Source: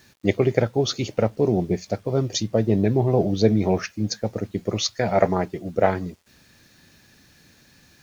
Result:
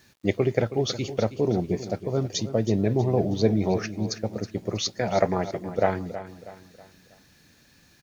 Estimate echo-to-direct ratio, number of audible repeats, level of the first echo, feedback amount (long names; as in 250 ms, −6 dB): −12.0 dB, 3, −13.0 dB, 41%